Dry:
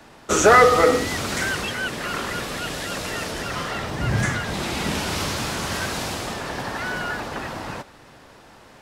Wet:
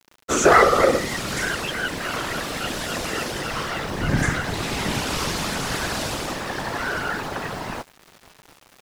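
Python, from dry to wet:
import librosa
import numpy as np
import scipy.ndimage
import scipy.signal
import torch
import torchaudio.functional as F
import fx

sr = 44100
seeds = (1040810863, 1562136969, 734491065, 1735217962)

p1 = fx.rider(x, sr, range_db=4, speed_s=2.0)
p2 = x + (p1 * librosa.db_to_amplitude(0.0))
p3 = fx.whisperise(p2, sr, seeds[0])
p4 = np.where(np.abs(p3) >= 10.0 ** (-34.0 / 20.0), p3, 0.0)
y = p4 * librosa.db_to_amplitude(-7.0)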